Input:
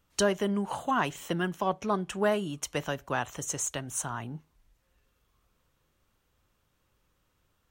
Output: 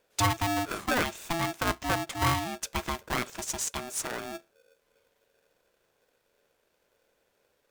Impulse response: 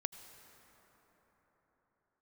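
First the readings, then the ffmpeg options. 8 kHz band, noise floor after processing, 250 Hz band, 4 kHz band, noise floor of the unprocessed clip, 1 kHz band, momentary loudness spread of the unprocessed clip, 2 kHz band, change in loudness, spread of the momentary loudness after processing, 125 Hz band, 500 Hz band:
+0.5 dB, -74 dBFS, -2.5 dB, +4.5 dB, -74 dBFS, +1.5 dB, 6 LU, +3.0 dB, +0.5 dB, 6 LU, +3.0 dB, -5.0 dB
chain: -af "aeval=exprs='val(0)*sgn(sin(2*PI*500*n/s))':c=same"

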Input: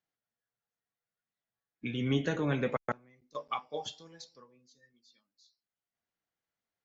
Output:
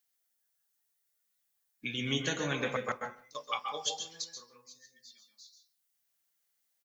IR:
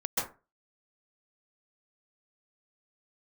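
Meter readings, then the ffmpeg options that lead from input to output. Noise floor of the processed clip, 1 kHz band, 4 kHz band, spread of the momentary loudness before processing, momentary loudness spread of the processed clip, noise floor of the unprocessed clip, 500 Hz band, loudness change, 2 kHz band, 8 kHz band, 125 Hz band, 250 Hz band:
-79 dBFS, +1.0 dB, +8.0 dB, 19 LU, 23 LU, under -85 dBFS, -2.5 dB, -0.5 dB, +3.5 dB, no reading, -5.5 dB, -5.0 dB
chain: -filter_complex "[0:a]crystalizer=i=9.5:c=0,asplit=2[s0][s1];[s1]adelay=150,highpass=300,lowpass=3400,asoftclip=type=hard:threshold=0.0944,volume=0.112[s2];[s0][s2]amix=inputs=2:normalize=0,asplit=2[s3][s4];[1:a]atrim=start_sample=2205[s5];[s4][s5]afir=irnorm=-1:irlink=0,volume=0.376[s6];[s3][s6]amix=inputs=2:normalize=0,volume=0.355"

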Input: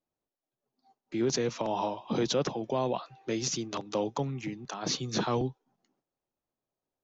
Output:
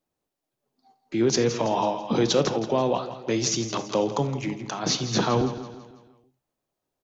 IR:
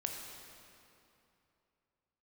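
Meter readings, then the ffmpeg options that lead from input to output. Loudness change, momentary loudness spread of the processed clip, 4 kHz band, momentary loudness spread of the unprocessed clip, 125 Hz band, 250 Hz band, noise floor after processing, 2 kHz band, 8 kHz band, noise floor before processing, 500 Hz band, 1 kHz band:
+7.0 dB, 8 LU, +7.0 dB, 7 LU, +7.0 dB, +7.0 dB, -84 dBFS, +7.0 dB, no reading, under -85 dBFS, +7.0 dB, +6.5 dB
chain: -filter_complex "[0:a]aecho=1:1:165|330|495|660|825:0.237|0.109|0.0502|0.0231|0.0106,asplit=2[s0][s1];[1:a]atrim=start_sample=2205,atrim=end_sample=3969[s2];[s1][s2]afir=irnorm=-1:irlink=0,volume=1.26[s3];[s0][s3]amix=inputs=2:normalize=0"

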